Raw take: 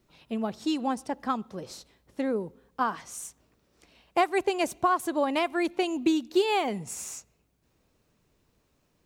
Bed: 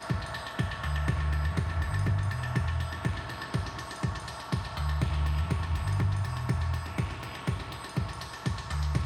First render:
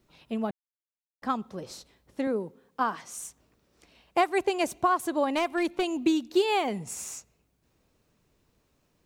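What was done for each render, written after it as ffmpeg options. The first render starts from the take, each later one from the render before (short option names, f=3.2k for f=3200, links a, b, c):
-filter_complex "[0:a]asettb=1/sr,asplit=3[a][b][c];[a]atrim=end=2.274[d];[b]atrim=start=2.27:end=3.18,asetpts=PTS-STARTPTS,afade=t=in:d=0.004:c=qsin,afade=t=out:st=0.906:d=0.004:c=qsin,highpass=140[e];[c]atrim=start=3.176[f];[d][e]acrossfade=d=0.004:c1=hsin:c2=qsin[g];[g][f]acrossfade=d=0.004:c1=qsin:c2=hsin,asettb=1/sr,asplit=3[h][i][j];[h]atrim=end=5.324[k];[i]atrim=start=5.32:end=5.92,asetpts=PTS-STARTPTS,afade=t=in:d=0.004:c=qsin,afade=t=out:st=0.596:d=0.004:c=qsin,volume=21dB,asoftclip=hard,volume=-21dB[l];[j]atrim=start=5.916[m];[k][l]acrossfade=d=0.004:c1=hsin:c2=qsin[n];[n][m]acrossfade=d=0.004:c1=qsin:c2=hsin,asplit=3[o][p][q];[o]atrim=end=0.51,asetpts=PTS-STARTPTS,afade=t=out:st=0.506:d=0.004:c=hsin[r];[p]atrim=start=0.51:end=1.22,asetpts=PTS-STARTPTS,volume=0[s];[q]atrim=start=1.22,asetpts=PTS-STARTPTS,afade=t=in:d=0.004:c=hsin[t];[r][s][t]concat=n=3:v=0:a=1"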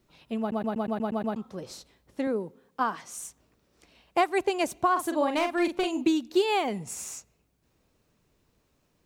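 -filter_complex "[0:a]asettb=1/sr,asplit=3[a][b][c];[a]atrim=end=4.924[d];[b]atrim=start=4.92:end=6.09,asetpts=PTS-STARTPTS,afade=t=in:d=0.004:c=qsin,afade=t=out:st=1.166:d=0.004:c=qsin,asplit=2[e][f];[f]adelay=43,volume=-6.5dB[g];[e][g]amix=inputs=2:normalize=0,atrim=end_sample=51597[h];[c]atrim=start=6.086[i];[d][h]acrossfade=d=0.004:c1=hsin:c2=qsin[j];[j][i]acrossfade=d=0.004:c1=qsin:c2=hsin,asplit=9[k][l][m][n][o][p][q][r][s];[k]atrim=end=0.522[t];[l]atrim=start=0.398:end=0.522[u];[m]atrim=start=0.398:end=0.522[v];[n]atrim=start=0.398:end=0.522[w];[o]atrim=start=0.398:end=0.522[x];[p]atrim=start=0.398:end=0.522[y];[q]atrim=start=0.398:end=0.522[z];[r]atrim=start=0.398:end=0.522[aa];[s]atrim=start=1.358[ab];[t][u]acrossfade=d=0.004:c1=hsin:c2=hsin[ac];[ac][v]acrossfade=d=0.004:c1=hsin:c2=hsin[ad];[ad][w]acrossfade=d=0.004:c1=hsin:c2=hsin[ae];[ae][x]acrossfade=d=0.004:c1=hsin:c2=hsin[af];[af][y]acrossfade=d=0.004:c1=hsin:c2=hsin[ag];[ag][z]acrossfade=d=0.004:c1=hsin:c2=hsin[ah];[ah][aa]acrossfade=d=0.004:c1=hsin:c2=hsin[ai];[ai][ab]acrossfade=d=0.004:c1=hsin:c2=hsin"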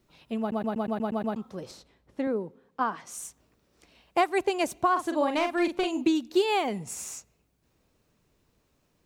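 -filter_complex "[0:a]asettb=1/sr,asplit=3[a][b][c];[a]atrim=end=1.714[d];[b]atrim=start=1.71:end=3.07,asetpts=PTS-STARTPTS,afade=t=in:d=0.004:c=qsin,afade=t=out:st=1.356:d=0.004:c=qsin,highshelf=f=4.5k:g=-10.5[e];[c]atrim=start=3.066[f];[d][e]acrossfade=d=0.004:c1=hsin:c2=qsin[g];[g][f]acrossfade=d=0.004:c1=qsin:c2=hsin,asettb=1/sr,asplit=3[h][i][j];[h]atrim=end=4.844[k];[i]atrim=start=4.84:end=6.15,asetpts=PTS-STARTPTS,afade=t=in:d=0.004:c=qsin,afade=t=out:st=1.306:d=0.004:c=qsin,acrossover=split=7400[l][m];[m]acompressor=threshold=-54dB:ratio=4:attack=1:release=60[n];[l][n]amix=inputs=2:normalize=0[o];[j]atrim=start=6.146[p];[k][o]acrossfade=d=0.004:c1=hsin:c2=qsin[q];[q][p]acrossfade=d=0.004:c1=qsin:c2=hsin"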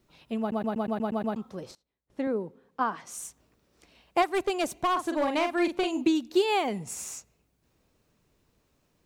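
-filter_complex "[0:a]asettb=1/sr,asplit=3[a][b][c];[a]atrim=end=4.224[d];[b]atrim=start=4.22:end=5.35,asetpts=PTS-STARTPTS,afade=t=in:d=0.004:c=qsin,afade=t=out:st=1.126:d=0.004:c=qsin,asoftclip=type=hard:threshold=-21.5dB[e];[c]atrim=start=5.346[f];[d][e]acrossfade=d=0.004:c1=hsin:c2=qsin[g];[g][f]acrossfade=d=0.004:c1=qsin:c2=hsin,asplit=3[h][i][j];[h]atrim=end=1.75,asetpts=PTS-STARTPTS,afade=t=out:st=1.4:d=0.35:c=log:silence=0.0668344[k];[i]atrim=start=1.75:end=2.1,asetpts=PTS-STARTPTS,volume=-23.5dB[l];[j]atrim=start=2.1,asetpts=PTS-STARTPTS,afade=t=in:d=0.35:c=log:silence=0.0668344[m];[k][l][m]concat=n=3:v=0:a=1"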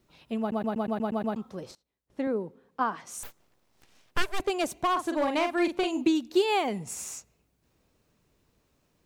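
-filter_complex "[0:a]asettb=1/sr,asplit=3[a][b][c];[a]atrim=end=3.234[d];[b]atrim=start=3.23:end=4.4,asetpts=PTS-STARTPTS,afade=t=in:d=0.004:c=qsin,afade=t=out:st=1.166:d=0.004:c=qsin,aeval=exprs='abs(val(0))':c=same[e];[c]atrim=start=4.396[f];[d][e]acrossfade=d=0.004:c1=hsin:c2=qsin[g];[g][f]acrossfade=d=0.004:c1=qsin:c2=hsin"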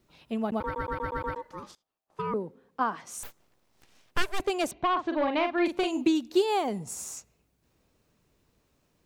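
-filter_complex "[0:a]asettb=1/sr,asplit=3[a][b][c];[a]atrim=end=0.604[d];[b]atrim=start=0.6:end=2.34,asetpts=PTS-STARTPTS,afade=t=in:d=0.004:c=qsin,afade=t=out:st=1.736:d=0.004:c=qsin,aeval=exprs='val(0)*sin(2*PI*710*n/s)':c=same[e];[c]atrim=start=2.336[f];[d][e]acrossfade=d=0.004:c1=hsin:c2=qsin[g];[g][f]acrossfade=d=0.004:c1=qsin:c2=hsin,asettb=1/sr,asplit=3[h][i][j];[h]atrim=end=4.714[k];[i]atrim=start=4.71:end=5.66,asetpts=PTS-STARTPTS,afade=t=in:d=0.004:c=qsin,afade=t=out:st=0.946:d=0.004:c=qsin,lowpass=f=4k:w=0.5412,lowpass=f=4k:w=1.3066[l];[j]atrim=start=5.656[m];[k][l]acrossfade=d=0.004:c1=hsin:c2=qsin[n];[n][m]acrossfade=d=0.004:c1=qsin:c2=hsin,asettb=1/sr,asplit=3[o][p][q];[o]atrim=end=6.404[r];[p]atrim=start=6.4:end=7.17,asetpts=PTS-STARTPTS,afade=t=in:d=0.004:c=qsin,afade=t=out:st=0.766:d=0.004:c=qsin,equalizer=f=2.4k:t=o:w=1:g=-7.5[s];[q]atrim=start=7.166[t];[r][s]acrossfade=d=0.004:c1=hsin:c2=qsin[u];[u][t]acrossfade=d=0.004:c1=qsin:c2=hsin"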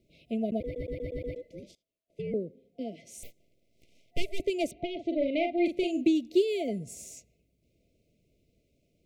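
-af "afftfilt=real='re*(1-between(b*sr/4096,710,2000))':imag='im*(1-between(b*sr/4096,710,2000))':win_size=4096:overlap=0.75,highshelf=f=3k:g=-8"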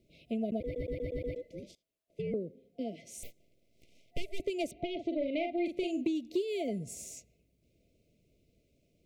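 -af "acompressor=threshold=-31dB:ratio=3"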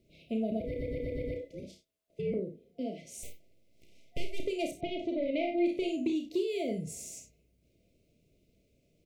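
-filter_complex "[0:a]asplit=2[a][b];[b]adelay=32,volume=-7.5dB[c];[a][c]amix=inputs=2:normalize=0,asplit=2[d][e];[e]aecho=0:1:52|63:0.316|0.237[f];[d][f]amix=inputs=2:normalize=0"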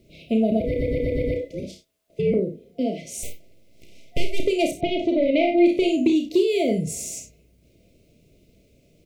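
-af "volume=12dB"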